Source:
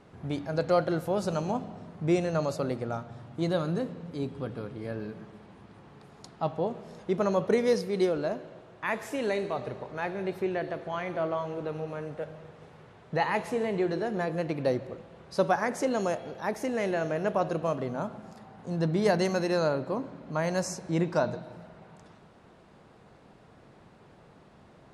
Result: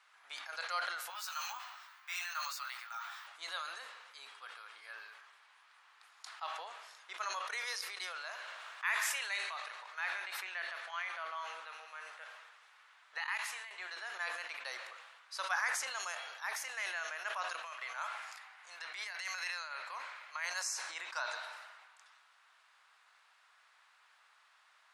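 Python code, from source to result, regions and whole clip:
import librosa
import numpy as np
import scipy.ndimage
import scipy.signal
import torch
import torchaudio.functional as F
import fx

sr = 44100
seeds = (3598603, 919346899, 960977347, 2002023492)

y = fx.chain(x, sr, fx.highpass(hz=920.0, slope=24),
    fx.doubler(ms=16.0, db=-4.0),
    fx.resample_bad(factor=2, down='filtered', up='hold'), at=(1.1, 3.27))
y = fx.chain(y, sr, fx.low_shelf(hz=190.0, db=-12.0),
    fx.sustainer(db_per_s=26.0), at=(8.07, 10.94))
y = fx.chain(y, sr, fx.peak_eq(hz=480.0, db=-9.0, octaves=1.1),
    fx.level_steps(step_db=16), at=(13.18, 13.71))
y = fx.chain(y, sr, fx.highpass(hz=360.0, slope=6),
    fx.peak_eq(hz=2200.0, db=7.5, octaves=0.61),
    fx.over_compress(threshold_db=-31.0, ratio=-0.5), at=(17.63, 20.45))
y = scipy.signal.sosfilt(scipy.signal.butter(4, 1200.0, 'highpass', fs=sr, output='sos'), y)
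y = fx.sustainer(y, sr, db_per_s=37.0)
y = y * librosa.db_to_amplitude(-1.0)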